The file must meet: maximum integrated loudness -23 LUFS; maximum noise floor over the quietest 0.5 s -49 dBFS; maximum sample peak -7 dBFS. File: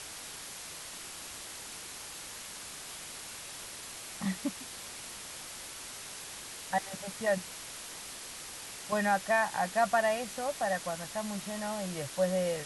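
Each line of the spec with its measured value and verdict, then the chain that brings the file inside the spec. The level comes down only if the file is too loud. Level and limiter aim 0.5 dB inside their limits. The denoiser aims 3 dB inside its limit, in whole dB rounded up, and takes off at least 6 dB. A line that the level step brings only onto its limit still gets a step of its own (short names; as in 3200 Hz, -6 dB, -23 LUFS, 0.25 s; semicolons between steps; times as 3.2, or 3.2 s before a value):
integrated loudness -35.0 LUFS: OK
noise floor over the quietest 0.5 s -45 dBFS: fail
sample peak -16.5 dBFS: OK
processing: denoiser 7 dB, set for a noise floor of -45 dBFS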